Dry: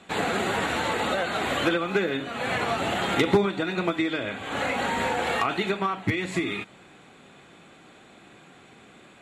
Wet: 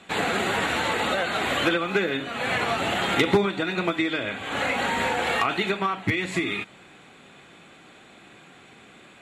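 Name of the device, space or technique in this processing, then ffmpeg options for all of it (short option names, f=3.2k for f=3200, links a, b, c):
presence and air boost: -af "equalizer=f=2.5k:t=o:w=1.8:g=3.5,highshelf=f=11k:g=4"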